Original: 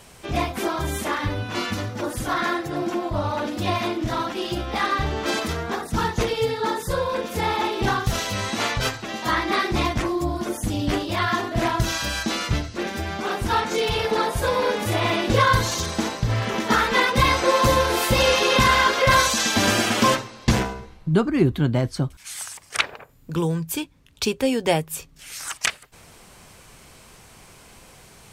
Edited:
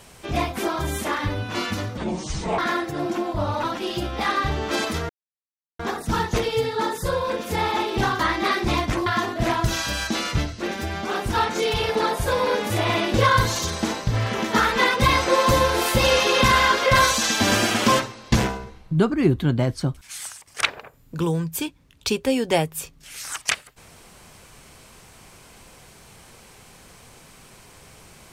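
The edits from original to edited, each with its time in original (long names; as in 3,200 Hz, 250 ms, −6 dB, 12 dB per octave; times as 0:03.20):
0:01.97–0:02.35: play speed 62%
0:03.40–0:04.18: remove
0:05.64: splice in silence 0.70 s
0:08.04–0:09.27: remove
0:10.14–0:11.22: remove
0:22.34–0:22.63: fade out, to −9.5 dB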